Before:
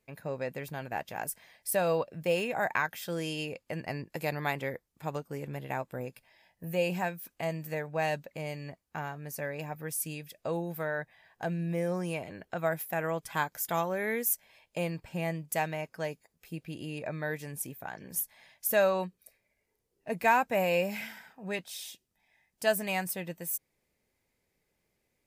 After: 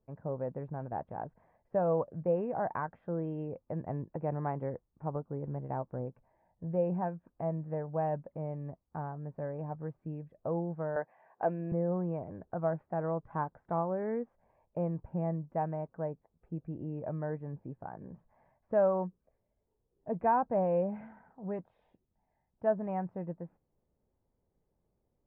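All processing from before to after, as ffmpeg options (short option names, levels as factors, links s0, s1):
-filter_complex "[0:a]asettb=1/sr,asplit=3[s0][s1][s2];[s0]atrim=end=10.964[s3];[s1]atrim=start=10.96:end=11.72,asetpts=PTS-STARTPTS,afade=t=in:d=0.004:c=qsin,afade=t=out:st=0.756:d=0.004:c=qsin,equalizer=f=2600:t=o:w=0.57:g=9,acontrast=88,highpass=390[s4];[s2]atrim=start=11.716[s5];[s3][s4]acrossfade=d=0.004:c1=hsin:c2=qsin[s6];[s6][s5]acrossfade=d=0.004:c1=qsin:c2=hsin,lowpass=f=1100:w=0.5412,lowpass=f=1100:w=1.3066,lowshelf=f=130:g=8,volume=0.841"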